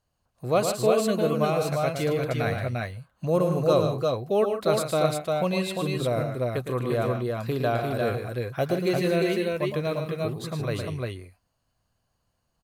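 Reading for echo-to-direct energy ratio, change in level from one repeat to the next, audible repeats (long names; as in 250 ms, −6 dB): −1.0 dB, repeats not evenly spaced, 3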